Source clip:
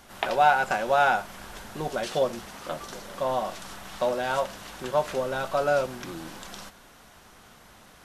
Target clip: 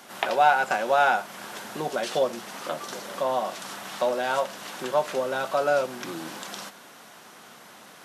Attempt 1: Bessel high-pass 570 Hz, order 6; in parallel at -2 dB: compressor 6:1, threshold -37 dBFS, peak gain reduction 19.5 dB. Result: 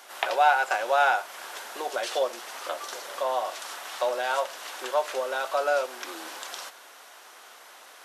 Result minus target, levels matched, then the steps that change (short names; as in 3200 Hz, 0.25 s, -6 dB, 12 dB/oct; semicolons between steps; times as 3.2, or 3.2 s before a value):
250 Hz band -9.0 dB
change: Bessel high-pass 210 Hz, order 6